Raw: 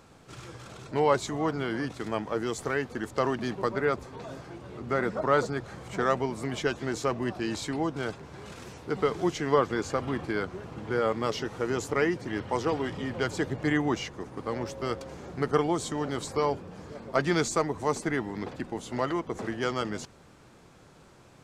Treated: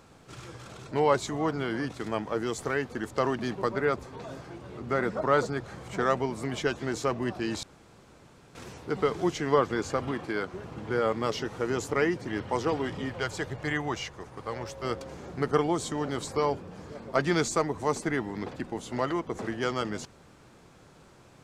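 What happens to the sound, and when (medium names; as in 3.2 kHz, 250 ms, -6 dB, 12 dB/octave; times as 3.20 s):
7.63–8.55 s: room tone
10.11–10.54 s: bass shelf 120 Hz -11.5 dB
13.09–14.85 s: peaking EQ 260 Hz -9 dB 1.3 oct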